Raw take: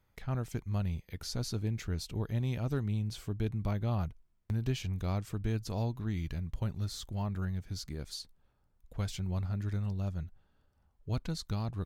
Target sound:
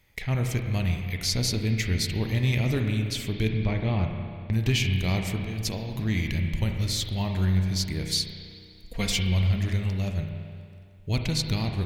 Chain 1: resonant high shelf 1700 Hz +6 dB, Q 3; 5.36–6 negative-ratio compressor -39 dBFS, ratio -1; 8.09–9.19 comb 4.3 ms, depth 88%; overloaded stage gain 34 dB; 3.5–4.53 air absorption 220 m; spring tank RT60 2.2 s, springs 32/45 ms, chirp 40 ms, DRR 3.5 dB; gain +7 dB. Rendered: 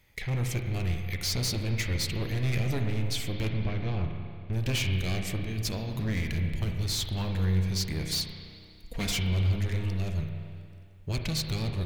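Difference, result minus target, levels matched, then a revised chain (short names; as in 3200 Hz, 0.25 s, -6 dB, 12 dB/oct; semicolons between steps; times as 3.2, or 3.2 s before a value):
overloaded stage: distortion +29 dB
resonant high shelf 1700 Hz +6 dB, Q 3; 5.36–6 negative-ratio compressor -39 dBFS, ratio -1; 8.09–9.19 comb 4.3 ms, depth 88%; overloaded stage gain 22.5 dB; 3.5–4.53 air absorption 220 m; spring tank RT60 2.2 s, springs 32/45 ms, chirp 40 ms, DRR 3.5 dB; gain +7 dB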